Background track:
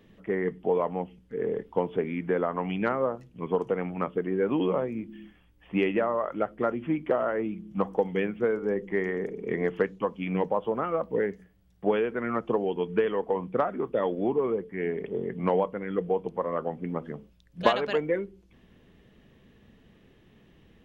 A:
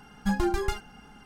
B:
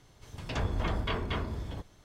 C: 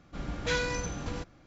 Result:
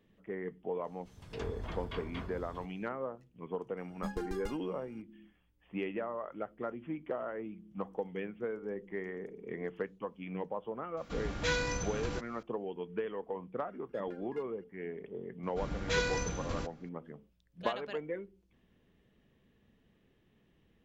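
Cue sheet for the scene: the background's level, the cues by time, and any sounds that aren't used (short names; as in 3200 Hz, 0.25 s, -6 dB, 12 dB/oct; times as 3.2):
background track -11.5 dB
0.84 add B -10 dB
3.77 add A -13.5 dB
10.97 add C -2 dB + mismatched tape noise reduction encoder only
13.68 add A -14.5 dB + LFO band-pass square 4.7 Hz 280–1900 Hz
15.43 add C -2 dB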